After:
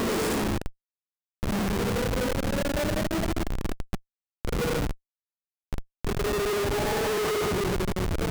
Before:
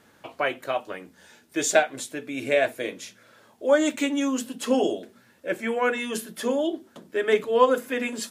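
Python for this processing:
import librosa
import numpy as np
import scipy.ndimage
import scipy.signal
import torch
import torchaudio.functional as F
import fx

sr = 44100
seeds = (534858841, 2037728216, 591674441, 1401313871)

p1 = fx.graphic_eq(x, sr, hz=(250, 4000, 8000), db=(-7, -9, 9))
p2 = fx.echo_pitch(p1, sr, ms=354, semitones=-3, count=2, db_per_echo=-3.0)
p3 = fx.paulstretch(p2, sr, seeds[0], factor=6.1, window_s=0.1, from_s=6.14)
p4 = p3 + fx.echo_feedback(p3, sr, ms=291, feedback_pct=54, wet_db=-22.5, dry=0)
y = fx.schmitt(p4, sr, flips_db=-23.5)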